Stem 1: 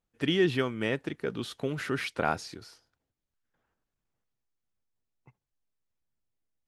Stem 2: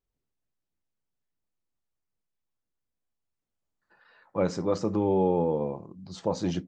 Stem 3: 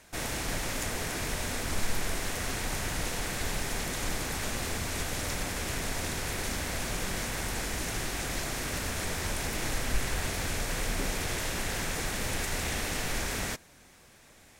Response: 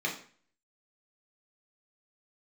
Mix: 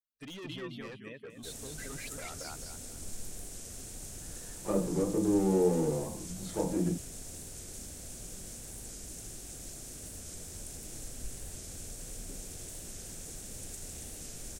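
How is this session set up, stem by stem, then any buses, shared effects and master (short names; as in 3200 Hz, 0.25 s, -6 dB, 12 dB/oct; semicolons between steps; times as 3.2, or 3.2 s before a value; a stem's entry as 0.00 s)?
-1.5 dB, 0.00 s, bus A, no send, echo send -11.5 dB, per-bin expansion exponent 2; high shelf 2400 Hz +6 dB; limiter -20.5 dBFS, peak gain reduction 6 dB
-3.5 dB, 0.30 s, bus A, send -6 dB, no echo send, treble ducked by the level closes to 710 Hz
-12.0 dB, 1.30 s, no bus, no send, no echo send, graphic EQ 1000/2000/4000/8000 Hz -11/-11/-4/+9 dB
bus A: 0.0 dB, soft clip -38.5 dBFS, distortion -4 dB; compressor 3:1, threshold -45 dBFS, peak gain reduction 4.5 dB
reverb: on, RT60 0.45 s, pre-delay 3 ms
echo: feedback echo 0.216 s, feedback 35%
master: record warp 45 rpm, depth 100 cents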